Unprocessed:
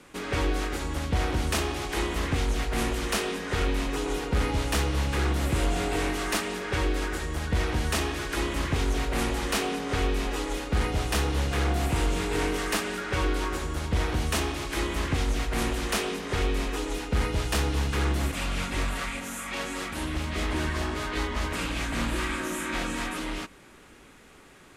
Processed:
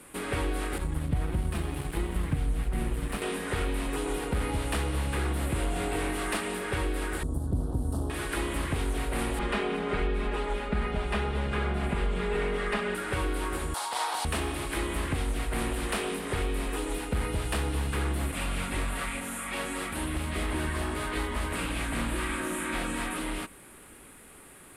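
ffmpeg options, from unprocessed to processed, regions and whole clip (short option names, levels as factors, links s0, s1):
-filter_complex "[0:a]asettb=1/sr,asplit=3[s0][s1][s2];[s0]atrim=end=0.784[s3];[s1]atrim=start=0.78:end=3.22,asetpts=PTS-STARTPTS,afade=t=in:d=0.004:c=qsin,afade=t=out:st=2.436:d=0.004:c=qsin,bass=f=250:g=13,treble=f=4000:g=-5,flanger=delay=5.3:depth=1.6:regen=39:speed=1.5:shape=sinusoidal,aeval=exprs='sgn(val(0))*max(abs(val(0))-0.015,0)':c=same[s4];[s2]atrim=start=3.216[s5];[s3][s4]acrossfade=d=0.004:c1=hsin:c2=qsin[s6];[s6][s5]acrossfade=d=0.004:c1=qsin:c2=hsin,asettb=1/sr,asplit=3[s7][s8][s9];[s7]atrim=end=7.234[s10];[s8]atrim=start=7.23:end=8.1,asetpts=PTS-STARTPTS,afade=t=in:d=0.004:c=qsin,afade=t=out:st=0.866:d=0.004:c=qsin,asuperstop=centerf=2200:order=4:qfactor=0.54,bass=f=250:g=8,treble=f=4000:g=-9,tremolo=f=200:d=0.75[s11];[s9]atrim=start=8.096[s12];[s10][s11]acrossfade=d=0.004:c1=hsin:c2=qsin[s13];[s13][s12]acrossfade=d=0.004:c1=qsin:c2=hsin,asettb=1/sr,asplit=3[s14][s15][s16];[s14]atrim=end=9.394[s17];[s15]atrim=start=9.39:end=12.95,asetpts=PTS-STARTPTS,afade=t=in:d=0.004:c=qsin,afade=t=out:st=3.556:d=0.004:c=qsin,lowpass=3100,aecho=1:1:4.9:0.99,atrim=end_sample=156996[s18];[s16]atrim=start=12.946[s19];[s17][s18]acrossfade=d=0.004:c1=hsin:c2=qsin[s20];[s20][s19]acrossfade=d=0.004:c1=qsin:c2=hsin,asettb=1/sr,asplit=3[s21][s22][s23];[s21]atrim=end=13.744[s24];[s22]atrim=start=13.74:end=14.25,asetpts=PTS-STARTPTS,afade=t=in:d=0.004:c=qsin,afade=t=out:st=0.506:d=0.004:c=qsin,highpass=f=880:t=q:w=3.9,highshelf=f=3300:t=q:w=1.5:g=10[s25];[s23]atrim=start=14.246[s26];[s24][s25]acrossfade=d=0.004:c1=hsin:c2=qsin[s27];[s27][s26]acrossfade=d=0.004:c1=qsin:c2=hsin,acrossover=split=5900[s28][s29];[s29]acompressor=threshold=0.00224:ratio=4:attack=1:release=60[s30];[s28][s30]amix=inputs=2:normalize=0,highshelf=f=7600:t=q:w=3:g=8.5,acompressor=threshold=0.0447:ratio=2.5"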